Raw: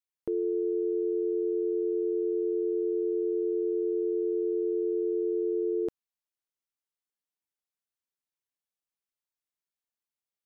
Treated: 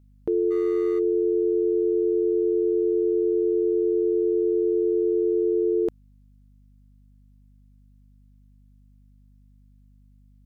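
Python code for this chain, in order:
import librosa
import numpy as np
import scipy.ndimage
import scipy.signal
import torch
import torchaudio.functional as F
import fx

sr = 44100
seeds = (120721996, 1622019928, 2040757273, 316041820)

y = fx.median_filter(x, sr, points=41, at=(0.5, 0.98), fade=0.02)
y = fx.add_hum(y, sr, base_hz=50, snr_db=30)
y = y * librosa.db_to_amplitude(6.5)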